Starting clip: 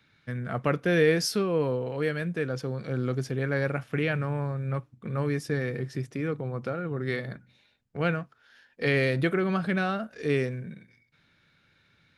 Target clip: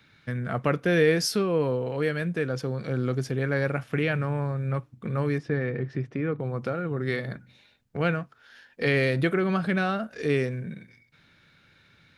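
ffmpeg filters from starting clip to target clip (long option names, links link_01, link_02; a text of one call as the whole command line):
ffmpeg -i in.wav -filter_complex "[0:a]asettb=1/sr,asplit=3[link_01][link_02][link_03];[link_01]atrim=end=5.384[link_04];[link_02]atrim=start=5.38:end=6.4,asetpts=PTS-STARTPTS,afade=type=in:duration=0.004:curve=qsin,afade=type=out:start_time=1.016:duration=0.004:curve=qsin,lowpass=2500[link_05];[link_03]atrim=start=6.396[link_06];[link_04][link_05]acrossfade=duration=0.004:curve1=hsin:curve2=qsin[link_07];[link_07][link_06]acrossfade=duration=0.004:curve1=qsin:curve2=hsin,asplit=2[link_08][link_09];[link_09]acompressor=threshold=-38dB:ratio=6,volume=-1dB[link_10];[link_08][link_10]amix=inputs=2:normalize=0" out.wav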